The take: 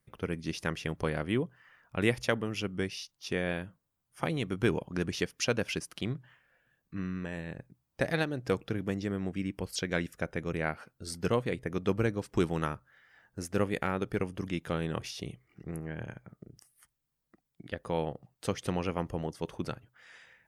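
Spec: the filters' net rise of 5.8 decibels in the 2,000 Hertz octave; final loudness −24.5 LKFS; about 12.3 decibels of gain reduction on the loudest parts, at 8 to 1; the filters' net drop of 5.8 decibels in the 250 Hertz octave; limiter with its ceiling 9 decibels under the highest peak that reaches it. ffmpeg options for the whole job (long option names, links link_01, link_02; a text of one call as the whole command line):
ffmpeg -i in.wav -af "equalizer=frequency=250:width_type=o:gain=-9,equalizer=frequency=2000:width_type=o:gain=7.5,acompressor=threshold=-33dB:ratio=8,volume=17dB,alimiter=limit=-9.5dB:level=0:latency=1" out.wav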